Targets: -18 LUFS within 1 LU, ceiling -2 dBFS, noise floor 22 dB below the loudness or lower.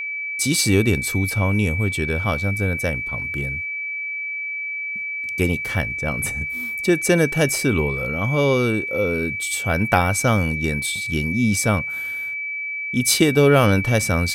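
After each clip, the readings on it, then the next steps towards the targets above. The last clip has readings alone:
steady tone 2.3 kHz; tone level -25 dBFS; loudness -20.5 LUFS; peak level -3.0 dBFS; loudness target -18.0 LUFS
-> band-stop 2.3 kHz, Q 30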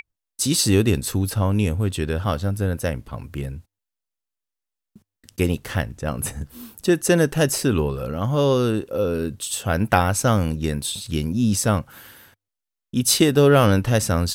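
steady tone not found; loudness -21.0 LUFS; peak level -2.5 dBFS; loudness target -18.0 LUFS
-> trim +3 dB; peak limiter -2 dBFS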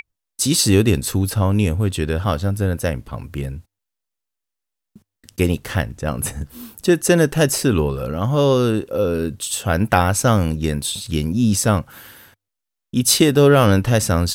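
loudness -18.5 LUFS; peak level -2.0 dBFS; noise floor -81 dBFS

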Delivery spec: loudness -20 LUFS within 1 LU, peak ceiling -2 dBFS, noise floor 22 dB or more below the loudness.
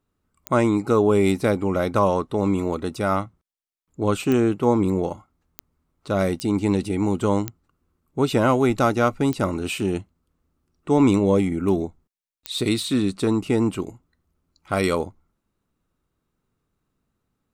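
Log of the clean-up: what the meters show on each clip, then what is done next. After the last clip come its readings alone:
clicks found 7; loudness -22.0 LUFS; peak level -7.0 dBFS; loudness target -20.0 LUFS
-> de-click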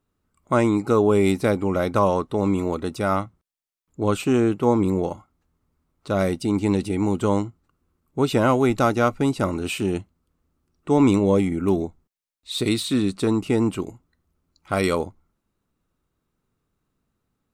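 clicks found 0; loudness -22.0 LUFS; peak level -7.0 dBFS; loudness target -20.0 LUFS
-> trim +2 dB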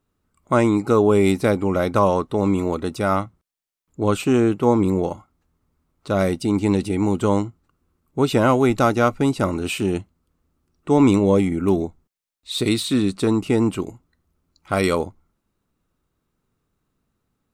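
loudness -20.0 LUFS; peak level -5.0 dBFS; noise floor -76 dBFS

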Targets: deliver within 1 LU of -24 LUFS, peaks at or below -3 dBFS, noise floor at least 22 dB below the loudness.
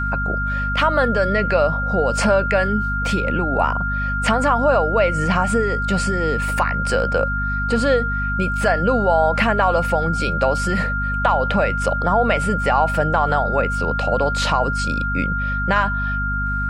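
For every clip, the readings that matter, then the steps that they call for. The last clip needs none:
hum 50 Hz; highest harmonic 250 Hz; hum level -22 dBFS; steady tone 1.4 kHz; tone level -22 dBFS; loudness -19.0 LUFS; peak level -4.0 dBFS; loudness target -24.0 LUFS
-> hum notches 50/100/150/200/250 Hz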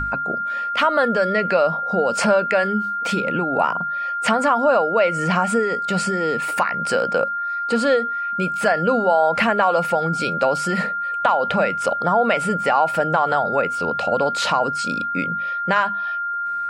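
hum not found; steady tone 1.4 kHz; tone level -22 dBFS
-> band-stop 1.4 kHz, Q 30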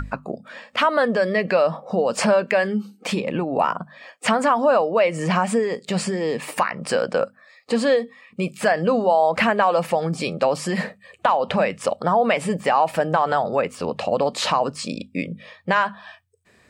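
steady tone not found; loudness -21.5 LUFS; peak level -6.5 dBFS; loudness target -24.0 LUFS
-> trim -2.5 dB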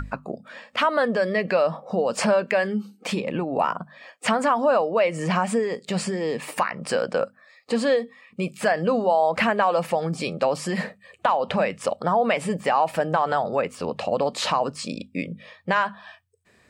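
loudness -24.0 LUFS; peak level -9.0 dBFS; noise floor -59 dBFS

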